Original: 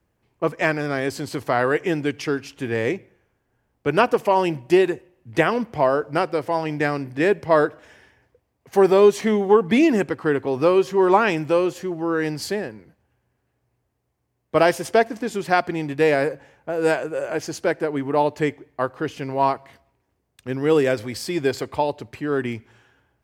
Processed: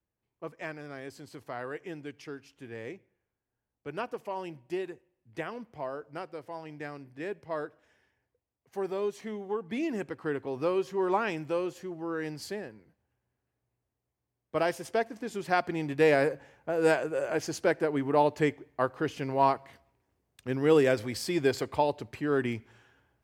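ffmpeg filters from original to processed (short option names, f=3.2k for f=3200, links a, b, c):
-af "volume=-4.5dB,afade=t=in:st=9.65:d=0.6:silence=0.473151,afade=t=in:st=15.14:d=0.99:silence=0.446684"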